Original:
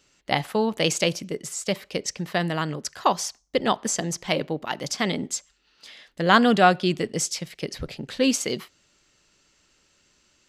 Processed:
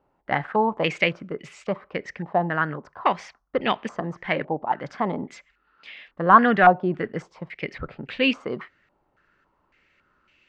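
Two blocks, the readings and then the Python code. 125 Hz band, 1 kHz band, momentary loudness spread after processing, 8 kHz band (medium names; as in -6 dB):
-2.0 dB, +3.5 dB, 19 LU, under -20 dB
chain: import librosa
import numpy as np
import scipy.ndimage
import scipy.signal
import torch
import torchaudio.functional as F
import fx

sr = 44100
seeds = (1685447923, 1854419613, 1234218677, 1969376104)

y = np.clip(10.0 ** (10.0 / 20.0) * x, -1.0, 1.0) / 10.0 ** (10.0 / 20.0)
y = fx.filter_held_lowpass(y, sr, hz=3.6, low_hz=850.0, high_hz=2500.0)
y = y * librosa.db_to_amplitude(-2.0)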